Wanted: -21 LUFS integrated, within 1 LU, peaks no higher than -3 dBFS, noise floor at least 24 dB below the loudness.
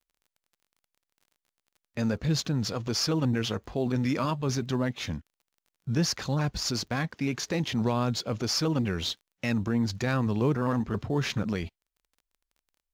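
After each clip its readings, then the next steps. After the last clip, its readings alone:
tick rate 23 per s; loudness -29.0 LUFS; peak level -15.5 dBFS; loudness target -21.0 LUFS
-> de-click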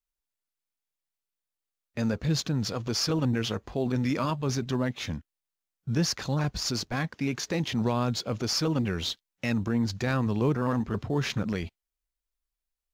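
tick rate 0.077 per s; loudness -29.0 LUFS; peak level -15.5 dBFS; loudness target -21.0 LUFS
-> trim +8 dB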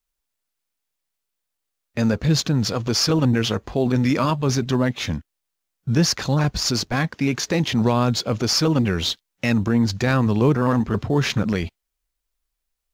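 loudness -21.0 LUFS; peak level -7.5 dBFS; noise floor -81 dBFS

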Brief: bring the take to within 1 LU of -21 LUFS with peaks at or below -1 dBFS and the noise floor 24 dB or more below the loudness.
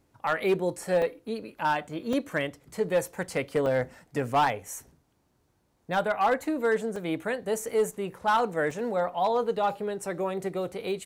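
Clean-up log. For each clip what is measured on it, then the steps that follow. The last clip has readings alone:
clipped samples 0.5%; clipping level -17.5 dBFS; dropouts 5; longest dropout 3.4 ms; loudness -28.5 LUFS; peak level -17.5 dBFS; loudness target -21.0 LUFS
-> clip repair -17.5 dBFS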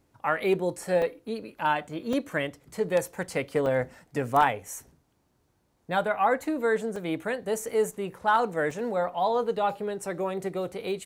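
clipped samples 0.0%; dropouts 5; longest dropout 3.4 ms
-> interpolate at 1.02/2.13/3.66/6.96/8.71 s, 3.4 ms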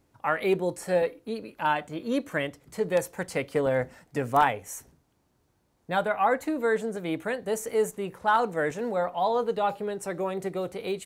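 dropouts 0; loudness -28.0 LUFS; peak level -8.5 dBFS; loudness target -21.0 LUFS
-> trim +7 dB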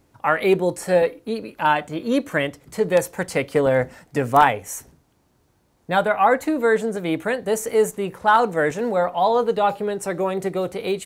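loudness -21.0 LUFS; peak level -1.5 dBFS; noise floor -63 dBFS

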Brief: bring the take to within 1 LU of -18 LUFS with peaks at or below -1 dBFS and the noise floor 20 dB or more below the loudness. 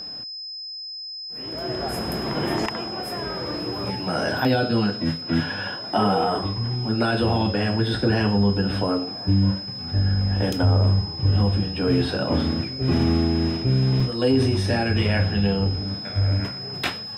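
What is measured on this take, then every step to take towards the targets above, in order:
dropouts 1; longest dropout 3.5 ms; steady tone 5.1 kHz; tone level -32 dBFS; loudness -23.0 LUFS; peak level -10.0 dBFS; loudness target -18.0 LUFS
-> interpolate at 14.00 s, 3.5 ms; band-stop 5.1 kHz, Q 30; trim +5 dB

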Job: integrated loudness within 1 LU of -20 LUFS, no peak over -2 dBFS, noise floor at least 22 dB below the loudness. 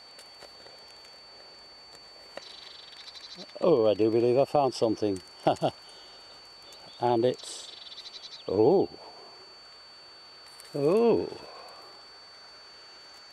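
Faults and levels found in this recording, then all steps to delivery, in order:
steady tone 4.5 kHz; tone level -49 dBFS; loudness -26.5 LUFS; peak level -10.0 dBFS; loudness target -20.0 LUFS
-> band-stop 4.5 kHz, Q 30; trim +6.5 dB

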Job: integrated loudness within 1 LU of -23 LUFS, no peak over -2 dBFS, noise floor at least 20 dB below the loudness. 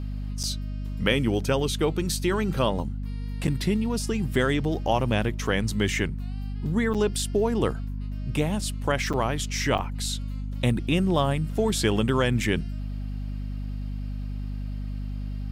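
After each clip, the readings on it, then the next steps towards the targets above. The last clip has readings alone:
dropouts 5; longest dropout 7.1 ms; hum 50 Hz; highest harmonic 250 Hz; hum level -29 dBFS; loudness -27.0 LUFS; peak level -9.0 dBFS; loudness target -23.0 LUFS
-> interpolate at 0.43/3.47/6.94/9.13/9.78 s, 7.1 ms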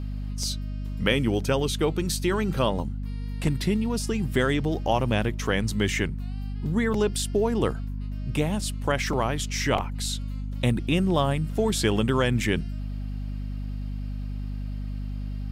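dropouts 0; hum 50 Hz; highest harmonic 250 Hz; hum level -29 dBFS
-> de-hum 50 Hz, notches 5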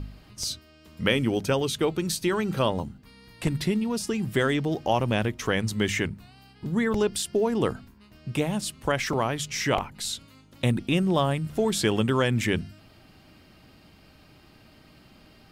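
hum not found; loudness -26.5 LUFS; peak level -9.5 dBFS; loudness target -23.0 LUFS
-> trim +3.5 dB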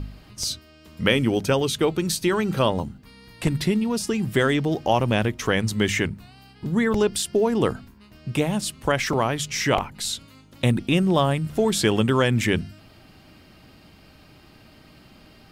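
loudness -23.0 LUFS; peak level -6.0 dBFS; noise floor -51 dBFS

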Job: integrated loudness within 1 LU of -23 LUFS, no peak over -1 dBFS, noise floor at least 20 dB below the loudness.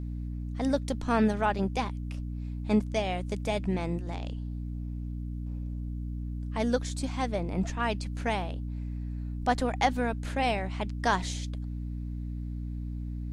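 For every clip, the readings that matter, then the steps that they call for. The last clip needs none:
hum 60 Hz; highest harmonic 300 Hz; hum level -32 dBFS; loudness -31.5 LUFS; peak level -13.0 dBFS; loudness target -23.0 LUFS
-> de-hum 60 Hz, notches 5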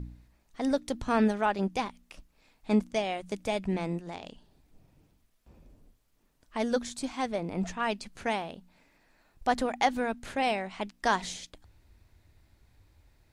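hum not found; loudness -31.0 LUFS; peak level -13.0 dBFS; loudness target -23.0 LUFS
-> trim +8 dB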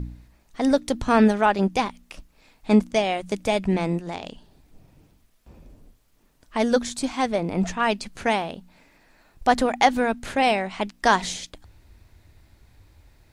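loudness -23.0 LUFS; peak level -5.0 dBFS; noise floor -61 dBFS

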